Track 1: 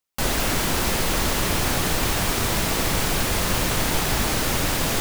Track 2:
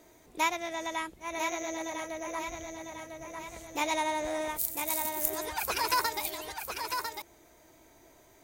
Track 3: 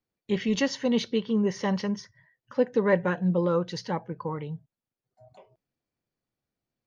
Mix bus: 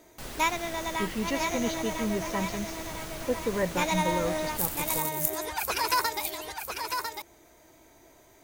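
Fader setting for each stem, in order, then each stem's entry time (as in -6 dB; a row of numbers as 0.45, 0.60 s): -17.5, +2.0, -6.0 dB; 0.00, 0.00, 0.70 s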